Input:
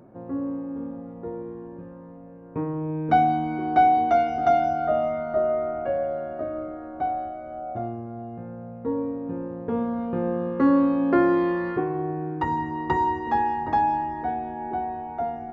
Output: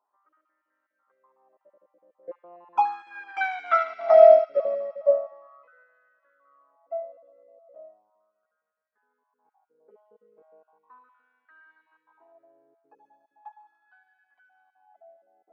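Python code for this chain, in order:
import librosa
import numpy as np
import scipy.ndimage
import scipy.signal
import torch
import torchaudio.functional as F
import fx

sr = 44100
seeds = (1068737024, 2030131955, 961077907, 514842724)

y = fx.spec_dropout(x, sr, seeds[0], share_pct=27)
y = fx.doppler_pass(y, sr, speed_mps=38, closest_m=14.0, pass_at_s=3.54)
y = fx.filter_lfo_highpass(y, sr, shape='sine', hz=0.37, low_hz=470.0, high_hz=1700.0, q=6.6)
y = fx.echo_wet_highpass(y, sr, ms=73, feedback_pct=79, hz=2700.0, wet_db=-4.0)
y = fx.upward_expand(y, sr, threshold_db=-39.0, expansion=1.5)
y = y * 10.0 ** (4.5 / 20.0)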